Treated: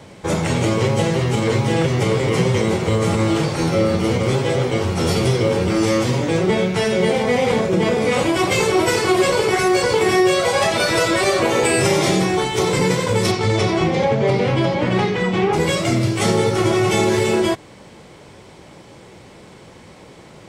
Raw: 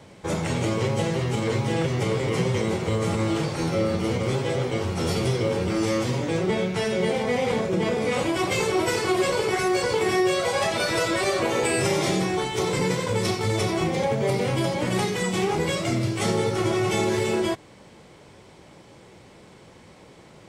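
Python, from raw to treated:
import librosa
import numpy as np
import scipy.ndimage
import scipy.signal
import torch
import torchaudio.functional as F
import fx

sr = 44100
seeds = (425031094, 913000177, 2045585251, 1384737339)

y = fx.lowpass(x, sr, hz=fx.line((13.31, 6700.0), (15.52, 2700.0)), slope=12, at=(13.31, 15.52), fade=0.02)
y = y * 10.0 ** (6.5 / 20.0)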